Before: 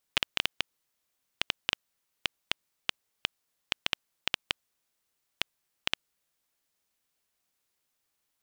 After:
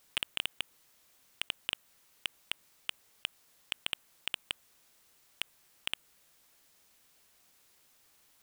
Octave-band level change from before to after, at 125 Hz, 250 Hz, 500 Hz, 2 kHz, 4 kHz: -9.0, -8.5, -8.5, -5.5, -4.0 dB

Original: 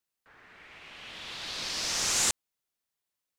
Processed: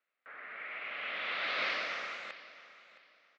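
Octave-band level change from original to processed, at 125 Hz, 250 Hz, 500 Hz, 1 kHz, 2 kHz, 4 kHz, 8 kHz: under -15 dB, -8.5 dB, +1.0 dB, +1.0 dB, +4.0 dB, -8.5 dB, -33.0 dB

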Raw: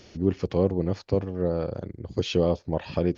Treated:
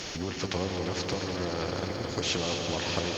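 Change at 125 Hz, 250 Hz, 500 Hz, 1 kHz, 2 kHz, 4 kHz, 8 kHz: -6.5 dB, -6.5 dB, -7.0 dB, +2.5 dB, +8.0 dB, +7.5 dB, n/a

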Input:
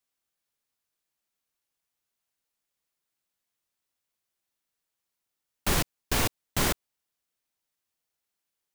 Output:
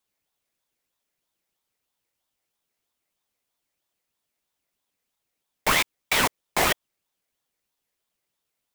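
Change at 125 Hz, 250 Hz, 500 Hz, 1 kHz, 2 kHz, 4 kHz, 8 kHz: -5.5, -1.0, +4.5, +8.0, +9.0, +6.0, +2.5 dB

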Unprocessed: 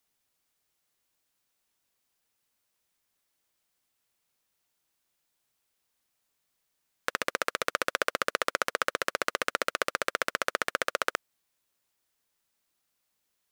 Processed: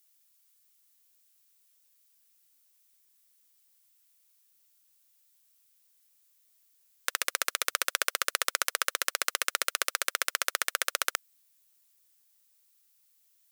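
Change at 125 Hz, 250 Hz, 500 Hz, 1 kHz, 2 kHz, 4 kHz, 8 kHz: under -15 dB, -12.5 dB, -8.5 dB, -3.0 dB, -1.0 dB, +4.0 dB, +8.5 dB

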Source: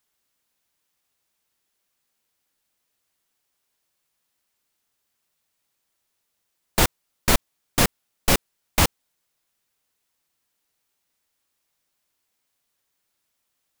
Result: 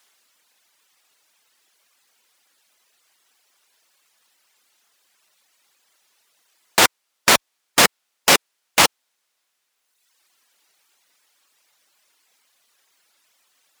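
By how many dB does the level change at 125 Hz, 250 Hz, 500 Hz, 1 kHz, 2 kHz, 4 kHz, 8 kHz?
-8.5, -1.0, +4.5, +7.5, +9.0, +8.5, +7.0 dB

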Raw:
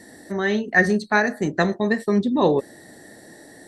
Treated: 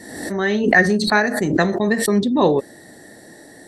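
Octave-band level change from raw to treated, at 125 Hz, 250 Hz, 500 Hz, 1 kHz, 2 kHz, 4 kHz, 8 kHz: +3.0, +3.5, +3.0, +3.0, +3.0, +7.5, +10.5 dB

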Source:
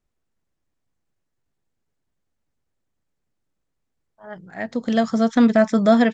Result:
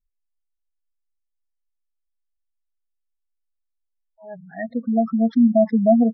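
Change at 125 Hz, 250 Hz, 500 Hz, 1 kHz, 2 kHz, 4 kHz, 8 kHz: 0.0 dB, 0.0 dB, -1.0 dB, -3.0 dB, -13.0 dB, under -20 dB, n/a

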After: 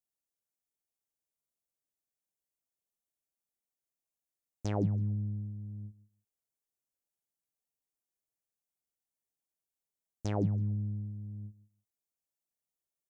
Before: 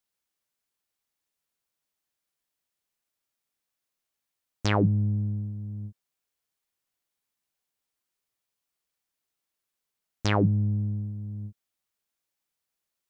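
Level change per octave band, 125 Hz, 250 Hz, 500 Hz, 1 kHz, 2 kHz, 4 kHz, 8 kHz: -7.0 dB, -7.5 dB, -7.5 dB, -11.5 dB, -19.0 dB, under -15 dB, n/a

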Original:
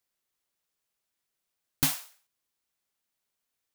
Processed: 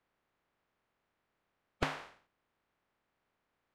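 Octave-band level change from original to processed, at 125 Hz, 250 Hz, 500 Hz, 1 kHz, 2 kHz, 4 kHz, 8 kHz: -7.0, -7.0, +8.0, +2.0, -2.0, -11.0, -24.0 dB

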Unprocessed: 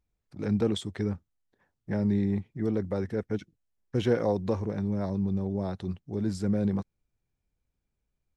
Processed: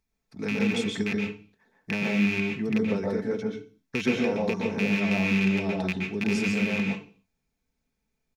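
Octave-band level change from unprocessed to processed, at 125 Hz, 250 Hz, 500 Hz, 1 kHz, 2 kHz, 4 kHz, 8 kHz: -1.5 dB, +3.5 dB, +1.5 dB, +3.5 dB, +17.5 dB, +8.0 dB, n/a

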